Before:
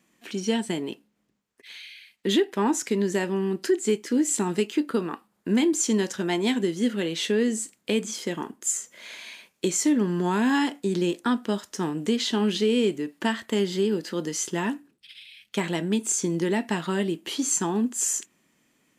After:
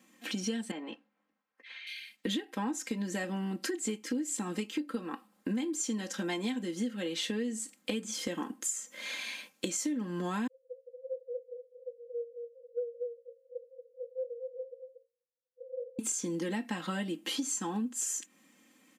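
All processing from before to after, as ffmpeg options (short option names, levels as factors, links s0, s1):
-filter_complex "[0:a]asettb=1/sr,asplit=3[s0][s1][s2];[s0]atrim=end=0.714[s3];[s1]atrim=start=0.71:end=1.87,asetpts=PTS-STARTPTS,afade=t=in:d=0.004:c=qsin,afade=t=out:st=1.156:d=0.004:c=qsin,lowpass=5100,acrossover=split=560 2200:gain=0.224 1 0.224[s4][s5][s6];[s4][s5][s6]amix=inputs=3:normalize=0,asplit=2[s7][s8];[s8]adelay=13,volume=0.251[s9];[s7][s9]amix=inputs=2:normalize=0,atrim=end_sample=51156[s10];[s2]atrim=start=1.866[s11];[s3][s10]acrossfade=d=0.004:c1=hsin:c2=qsin[s12];[s12][s11]acrossfade=d=0.004:c1=qsin:c2=hsin,asettb=1/sr,asplit=3[s13][s14][s15];[s13]atrim=end=10.474[s16];[s14]atrim=start=10.47:end=15.99,asetpts=PTS-STARTPTS,afade=t=in:d=0.004:c=qsin,afade=t=out:st=5.516:d=0.004:c=qsin,asuperpass=centerf=500:order=20:qfactor=7.8,tremolo=f=12:d=0.47,aecho=1:1:233:0.398,atrim=end_sample=243432[s17];[s15]atrim=start=15.986[s18];[s16][s17]acrossfade=d=0.004:c1=hsin:c2=qsin[s19];[s19][s18]acrossfade=d=0.004:c1=qsin:c2=hsin,highpass=130,aecho=1:1:3.8:0.89,acompressor=threshold=0.0251:ratio=6"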